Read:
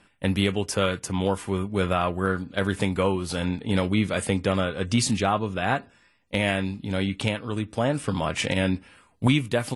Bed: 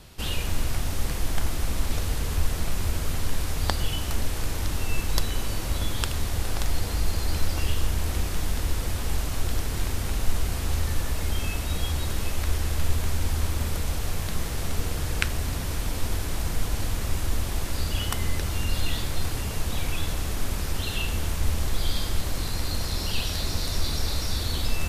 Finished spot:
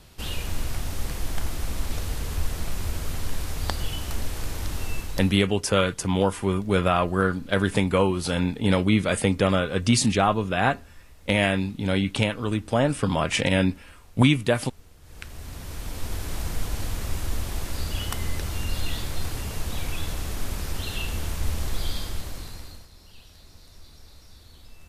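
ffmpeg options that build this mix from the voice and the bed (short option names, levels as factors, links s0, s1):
-filter_complex "[0:a]adelay=4950,volume=1.33[s0];[1:a]volume=9.44,afade=t=out:st=4.86:d=0.56:silence=0.0841395,afade=t=in:st=15.01:d=1.35:silence=0.0794328,afade=t=out:st=21.8:d=1.08:silence=0.0944061[s1];[s0][s1]amix=inputs=2:normalize=0"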